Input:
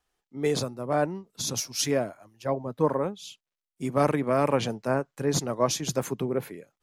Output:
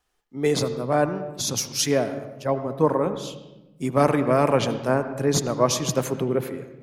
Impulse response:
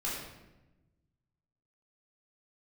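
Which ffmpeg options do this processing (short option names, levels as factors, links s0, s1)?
-filter_complex "[0:a]asplit=2[s0][s1];[1:a]atrim=start_sample=2205,lowpass=3800,adelay=78[s2];[s1][s2]afir=irnorm=-1:irlink=0,volume=0.188[s3];[s0][s3]amix=inputs=2:normalize=0,volume=1.58"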